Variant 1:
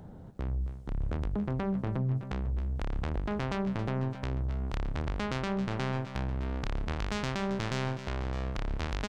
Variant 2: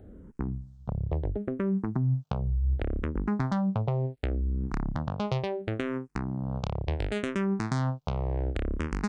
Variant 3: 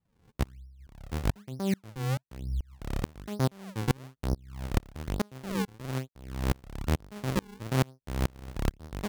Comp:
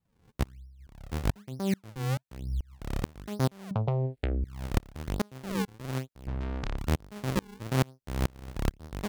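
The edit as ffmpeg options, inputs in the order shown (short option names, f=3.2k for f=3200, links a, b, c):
-filter_complex "[2:a]asplit=3[a][b][c];[a]atrim=end=3.712[d];[1:a]atrim=start=3.708:end=4.442[e];[b]atrim=start=4.438:end=6.272[f];[0:a]atrim=start=6.268:end=6.772[g];[c]atrim=start=6.768[h];[d][e]acrossfade=d=0.004:c1=hsin:c2=hsin[i];[i][f]acrossfade=d=0.004:c1=hsin:c2=hsin[j];[j][g]acrossfade=d=0.004:c1=hsin:c2=hsin[k];[k][h]acrossfade=d=0.004:c1=hsin:c2=hsin"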